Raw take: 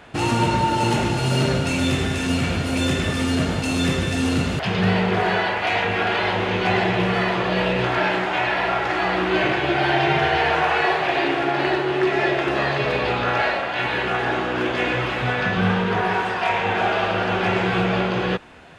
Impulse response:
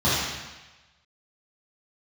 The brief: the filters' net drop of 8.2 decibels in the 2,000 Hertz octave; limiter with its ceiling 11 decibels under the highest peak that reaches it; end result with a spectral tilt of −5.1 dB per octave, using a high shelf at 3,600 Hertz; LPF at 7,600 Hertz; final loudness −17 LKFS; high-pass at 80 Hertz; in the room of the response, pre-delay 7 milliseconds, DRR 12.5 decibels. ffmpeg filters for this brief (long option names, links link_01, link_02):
-filter_complex "[0:a]highpass=80,lowpass=7600,equalizer=frequency=2000:width_type=o:gain=-8.5,highshelf=frequency=3600:gain=-8.5,alimiter=limit=-20.5dB:level=0:latency=1,asplit=2[link_01][link_02];[1:a]atrim=start_sample=2205,adelay=7[link_03];[link_02][link_03]afir=irnorm=-1:irlink=0,volume=-30.5dB[link_04];[link_01][link_04]amix=inputs=2:normalize=0,volume=11.5dB"